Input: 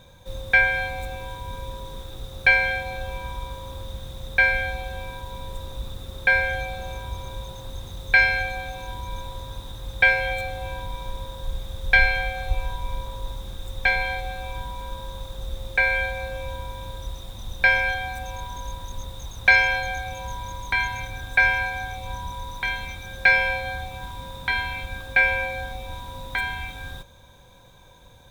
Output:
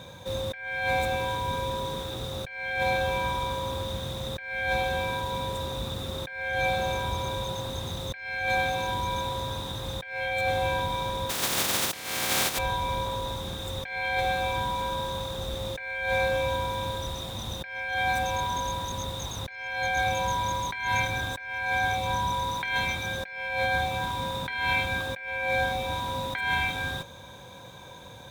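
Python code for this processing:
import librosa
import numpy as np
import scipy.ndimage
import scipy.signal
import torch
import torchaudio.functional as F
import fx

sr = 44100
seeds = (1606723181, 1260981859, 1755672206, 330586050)

y = fx.spec_flatten(x, sr, power=0.23, at=(11.29, 12.57), fade=0.02)
y = scipy.signal.sosfilt(scipy.signal.butter(2, 110.0, 'highpass', fs=sr, output='sos'), y)
y = fx.high_shelf(y, sr, hz=9300.0, db=-6.0)
y = fx.over_compress(y, sr, threshold_db=-32.0, ratio=-1.0)
y = F.gain(torch.from_numpy(y), 2.5).numpy()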